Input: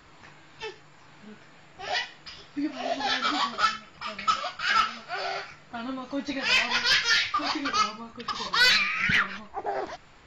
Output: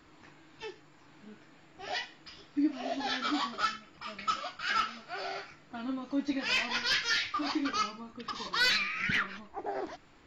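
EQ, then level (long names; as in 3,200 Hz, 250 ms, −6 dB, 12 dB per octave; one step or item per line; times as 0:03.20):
parametric band 300 Hz +9 dB 0.69 octaves
−7.0 dB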